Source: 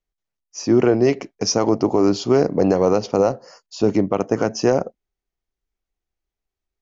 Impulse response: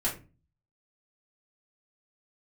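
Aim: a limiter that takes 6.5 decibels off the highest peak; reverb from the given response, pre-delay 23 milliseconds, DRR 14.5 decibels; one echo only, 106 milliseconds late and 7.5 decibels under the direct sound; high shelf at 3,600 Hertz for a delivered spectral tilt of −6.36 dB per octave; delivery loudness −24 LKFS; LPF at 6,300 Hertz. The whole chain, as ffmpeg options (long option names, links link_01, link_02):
-filter_complex "[0:a]lowpass=6300,highshelf=frequency=3600:gain=-6.5,alimiter=limit=-12dB:level=0:latency=1,aecho=1:1:106:0.422,asplit=2[link_01][link_02];[1:a]atrim=start_sample=2205,adelay=23[link_03];[link_02][link_03]afir=irnorm=-1:irlink=0,volume=-21.5dB[link_04];[link_01][link_04]amix=inputs=2:normalize=0,volume=-1dB"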